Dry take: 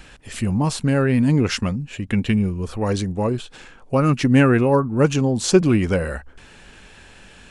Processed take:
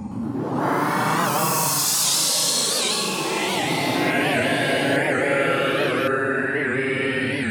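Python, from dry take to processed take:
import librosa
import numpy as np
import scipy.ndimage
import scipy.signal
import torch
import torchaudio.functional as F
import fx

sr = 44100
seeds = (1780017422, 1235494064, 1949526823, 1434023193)

p1 = fx.spec_quant(x, sr, step_db=15)
p2 = fx.highpass(p1, sr, hz=1500.0, slope=6)
p3 = fx.over_compress(p2, sr, threshold_db=-30.0, ratio=-1.0)
p4 = p2 + (p3 * librosa.db_to_amplitude(1.5))
p5 = fx.paulstretch(p4, sr, seeds[0], factor=13.0, window_s=0.05, from_s=0.56)
p6 = p5 + fx.echo_single(p5, sr, ms=952, db=-12.0, dry=0)
p7 = fx.echo_pitch(p6, sr, ms=116, semitones=4, count=3, db_per_echo=-3.0)
y = fx.record_warp(p7, sr, rpm=78.0, depth_cents=160.0)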